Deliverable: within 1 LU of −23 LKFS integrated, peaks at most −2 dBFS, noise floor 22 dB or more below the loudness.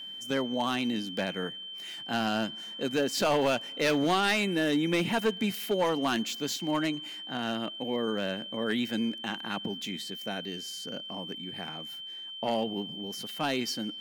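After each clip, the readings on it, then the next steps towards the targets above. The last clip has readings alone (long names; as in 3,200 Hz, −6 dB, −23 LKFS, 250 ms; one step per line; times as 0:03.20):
share of clipped samples 0.8%; peaks flattened at −20.5 dBFS; interfering tone 3,100 Hz; level of the tone −39 dBFS; integrated loudness −30.5 LKFS; sample peak −20.5 dBFS; target loudness −23.0 LKFS
→ clipped peaks rebuilt −20.5 dBFS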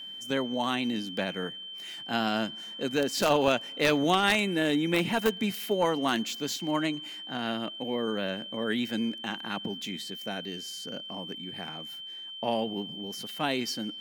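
share of clipped samples 0.0%; interfering tone 3,100 Hz; level of the tone −39 dBFS
→ notch filter 3,100 Hz, Q 30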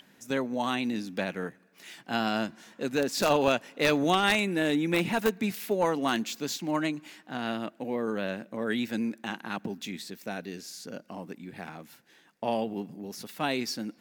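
interfering tone none found; integrated loudness −30.0 LKFS; sample peak −11.0 dBFS; target loudness −23.0 LKFS
→ level +7 dB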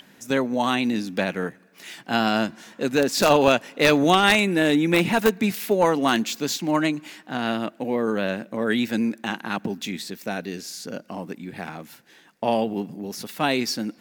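integrated loudness −23.0 LKFS; sample peak −4.0 dBFS; background noise floor −54 dBFS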